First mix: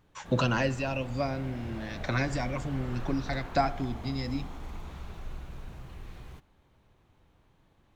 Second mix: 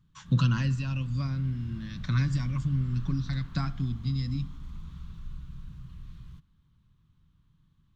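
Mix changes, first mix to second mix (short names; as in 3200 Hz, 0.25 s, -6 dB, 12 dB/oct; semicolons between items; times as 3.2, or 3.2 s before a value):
speech +4.5 dB; master: add EQ curve 100 Hz 0 dB, 160 Hz +5 dB, 430 Hz -21 dB, 740 Hz -27 dB, 1100 Hz -8 dB, 2300 Hz -14 dB, 3300 Hz -5 dB, 9800 Hz -11 dB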